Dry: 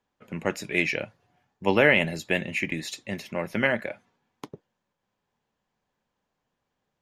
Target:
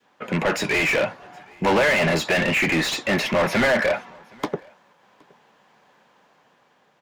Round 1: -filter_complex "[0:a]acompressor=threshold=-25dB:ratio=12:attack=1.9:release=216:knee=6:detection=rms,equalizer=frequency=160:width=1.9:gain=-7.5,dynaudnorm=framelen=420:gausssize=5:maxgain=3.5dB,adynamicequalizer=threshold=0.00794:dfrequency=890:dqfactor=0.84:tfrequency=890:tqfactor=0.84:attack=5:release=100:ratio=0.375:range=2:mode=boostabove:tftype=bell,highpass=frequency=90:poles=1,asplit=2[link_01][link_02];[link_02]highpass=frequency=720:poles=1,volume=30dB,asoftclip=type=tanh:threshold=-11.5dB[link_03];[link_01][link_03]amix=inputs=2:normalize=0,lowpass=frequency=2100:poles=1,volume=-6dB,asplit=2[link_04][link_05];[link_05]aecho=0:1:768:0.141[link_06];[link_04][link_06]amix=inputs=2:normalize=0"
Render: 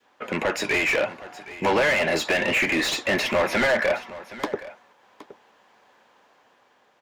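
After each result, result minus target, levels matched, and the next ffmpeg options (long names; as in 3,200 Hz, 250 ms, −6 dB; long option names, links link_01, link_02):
downward compressor: peak gain reduction +8 dB; echo-to-direct +11.5 dB; 125 Hz band −7.0 dB
-filter_complex "[0:a]acompressor=threshold=-16.5dB:ratio=12:attack=1.9:release=216:knee=6:detection=rms,equalizer=frequency=160:width=1.9:gain=-7.5,dynaudnorm=framelen=420:gausssize=5:maxgain=3.5dB,adynamicequalizer=threshold=0.00794:dfrequency=890:dqfactor=0.84:tfrequency=890:tqfactor=0.84:attack=5:release=100:ratio=0.375:range=2:mode=boostabove:tftype=bell,highpass=frequency=90:poles=1,asplit=2[link_01][link_02];[link_02]highpass=frequency=720:poles=1,volume=30dB,asoftclip=type=tanh:threshold=-11.5dB[link_03];[link_01][link_03]amix=inputs=2:normalize=0,lowpass=frequency=2100:poles=1,volume=-6dB,asplit=2[link_04][link_05];[link_05]aecho=0:1:768:0.141[link_06];[link_04][link_06]amix=inputs=2:normalize=0"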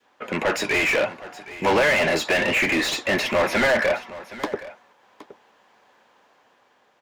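echo-to-direct +11.5 dB; 125 Hz band −6.5 dB
-filter_complex "[0:a]acompressor=threshold=-16.5dB:ratio=12:attack=1.9:release=216:knee=6:detection=rms,equalizer=frequency=160:width=1.9:gain=-7.5,dynaudnorm=framelen=420:gausssize=5:maxgain=3.5dB,adynamicequalizer=threshold=0.00794:dfrequency=890:dqfactor=0.84:tfrequency=890:tqfactor=0.84:attack=5:release=100:ratio=0.375:range=2:mode=boostabove:tftype=bell,highpass=frequency=90:poles=1,asplit=2[link_01][link_02];[link_02]highpass=frequency=720:poles=1,volume=30dB,asoftclip=type=tanh:threshold=-11.5dB[link_03];[link_01][link_03]amix=inputs=2:normalize=0,lowpass=frequency=2100:poles=1,volume=-6dB,asplit=2[link_04][link_05];[link_05]aecho=0:1:768:0.0376[link_06];[link_04][link_06]amix=inputs=2:normalize=0"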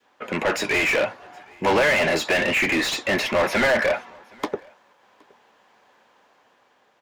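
125 Hz band −6.5 dB
-filter_complex "[0:a]acompressor=threshold=-16.5dB:ratio=12:attack=1.9:release=216:knee=6:detection=rms,equalizer=frequency=160:width=1.9:gain=3.5,dynaudnorm=framelen=420:gausssize=5:maxgain=3.5dB,adynamicequalizer=threshold=0.00794:dfrequency=890:dqfactor=0.84:tfrequency=890:tqfactor=0.84:attack=5:release=100:ratio=0.375:range=2:mode=boostabove:tftype=bell,highpass=frequency=90:poles=1,asplit=2[link_01][link_02];[link_02]highpass=frequency=720:poles=1,volume=30dB,asoftclip=type=tanh:threshold=-11.5dB[link_03];[link_01][link_03]amix=inputs=2:normalize=0,lowpass=frequency=2100:poles=1,volume=-6dB,asplit=2[link_04][link_05];[link_05]aecho=0:1:768:0.0376[link_06];[link_04][link_06]amix=inputs=2:normalize=0"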